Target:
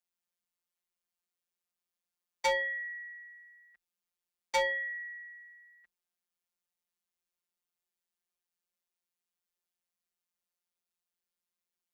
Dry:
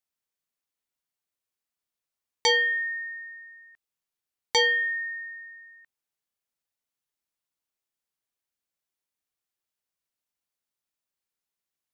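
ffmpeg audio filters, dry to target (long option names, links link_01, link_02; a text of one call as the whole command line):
ffmpeg -i in.wav -af "afftfilt=real='hypot(re,im)*cos(PI*b)':imag='0':win_size=1024:overlap=0.75,aeval=exprs='clip(val(0),-1,0.1)':channel_layout=same,afreqshift=27" out.wav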